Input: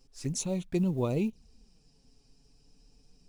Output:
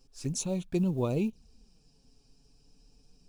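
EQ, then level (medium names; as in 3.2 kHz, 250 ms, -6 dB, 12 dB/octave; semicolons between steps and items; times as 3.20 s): band-stop 2 kHz, Q 6.8; 0.0 dB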